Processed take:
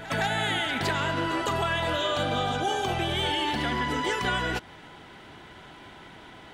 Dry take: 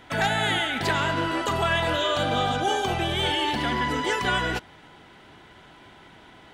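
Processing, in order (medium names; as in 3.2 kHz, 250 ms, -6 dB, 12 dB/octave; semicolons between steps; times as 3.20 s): compression 2.5:1, threshold -29 dBFS, peak gain reduction 7 dB; on a send: reverse echo 162 ms -15 dB; on the sum: trim +2.5 dB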